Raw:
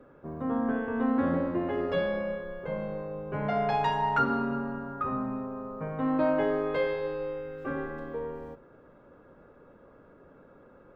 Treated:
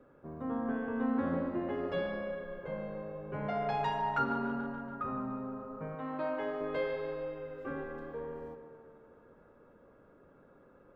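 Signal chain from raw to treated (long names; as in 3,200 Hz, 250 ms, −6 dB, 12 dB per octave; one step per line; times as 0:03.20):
0:05.95–0:06.61: low-shelf EQ 350 Hz −11.5 dB
tape delay 144 ms, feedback 75%, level −11.5 dB, low-pass 4,100 Hz
level −6 dB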